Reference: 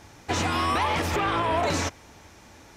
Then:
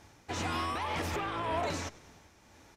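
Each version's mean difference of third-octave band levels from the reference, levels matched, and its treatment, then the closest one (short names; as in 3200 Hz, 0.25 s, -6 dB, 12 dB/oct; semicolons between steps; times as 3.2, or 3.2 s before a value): 1.5 dB: on a send: frequency-shifting echo 98 ms, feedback 55%, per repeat -85 Hz, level -21 dB; on the sum: tremolo 1.9 Hz, depth 34%; gain -7.5 dB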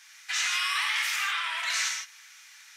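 17.0 dB: inverse Chebyshev high-pass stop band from 270 Hz, stop band 80 dB; non-linear reverb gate 0.18 s flat, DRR 0 dB; gain +1.5 dB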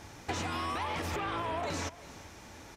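4.5 dB: compressor 5:1, threshold -33 dBFS, peak gain reduction 11 dB; on a send: echo 0.348 s -18.5 dB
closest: first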